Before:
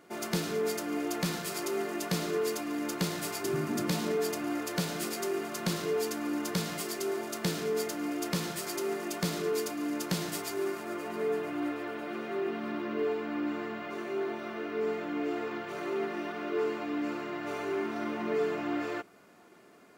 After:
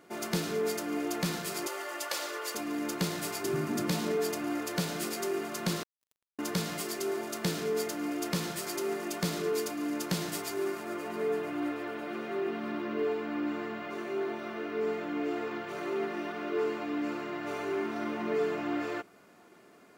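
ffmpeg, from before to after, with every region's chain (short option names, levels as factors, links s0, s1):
-filter_complex "[0:a]asettb=1/sr,asplit=3[s0][s1][s2];[s0]atrim=end=1.674[s3];[s1]atrim=start=1.67:end=2.55,asetpts=PTS-STARTPTS,afade=t=in:d=0.004:c=qsin,afade=t=out:st=0.876:d=0.004:c=qsin,highpass=f=490:w=0.5412,highpass=f=490:w=1.3066,aecho=1:1:3.5:0.65,atrim=end_sample=38808[s4];[s2]atrim=start=2.546[s5];[s3][s4]acrossfade=d=0.004:c1=hsin:c2=qsin[s6];[s6][s5]acrossfade=d=0.004:c1=qsin:c2=hsin,asettb=1/sr,asplit=3[s7][s8][s9];[s7]atrim=end=5.834[s10];[s8]atrim=start=5.83:end=6.39,asetpts=PTS-STARTPTS,afade=t=in:d=0.004:c=qsin,afade=t=out:st=0.556:d=0.004:c=qsin,tremolo=f=180:d=0.75,acompressor=threshold=0.02:ratio=6:attack=3.2:release=140:knee=1:detection=peak,acrusher=bits=3:mix=0:aa=0.5[s11];[s9]atrim=start=6.386[s12];[s10][s11]acrossfade=d=0.004:c1=hsin:c2=qsin[s13];[s13][s12]acrossfade=d=0.004:c1=qsin:c2=hsin"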